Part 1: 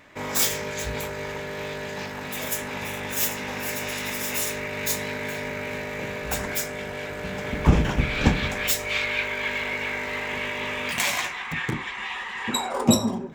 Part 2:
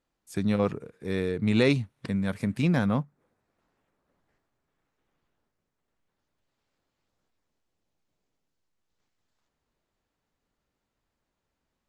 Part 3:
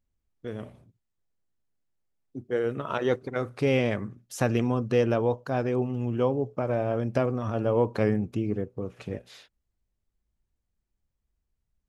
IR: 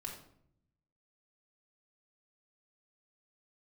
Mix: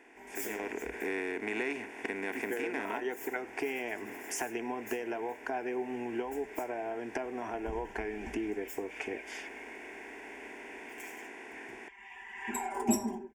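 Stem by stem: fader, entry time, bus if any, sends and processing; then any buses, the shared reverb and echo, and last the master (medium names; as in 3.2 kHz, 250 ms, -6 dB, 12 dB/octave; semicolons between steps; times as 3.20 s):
-19.0 dB, 0.00 s, no bus, no send, comb 5.1 ms, depth 75%; auto duck -15 dB, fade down 1.25 s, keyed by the second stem
-8.5 dB, 0.00 s, bus A, no send, spectral levelling over time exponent 0.4
+1.5 dB, 0.00 s, bus A, no send, compression, threshold -29 dBFS, peak gain reduction 11 dB
bus A: 0.0 dB, band-pass 430–7800 Hz; compression 3:1, threshold -42 dBFS, peak gain reduction 12 dB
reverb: none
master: static phaser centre 810 Hz, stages 8; level rider gain up to 11 dB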